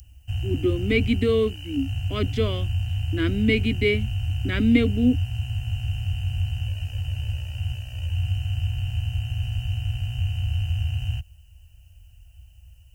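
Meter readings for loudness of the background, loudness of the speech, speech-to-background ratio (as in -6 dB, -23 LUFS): -28.0 LUFS, -24.5 LUFS, 3.5 dB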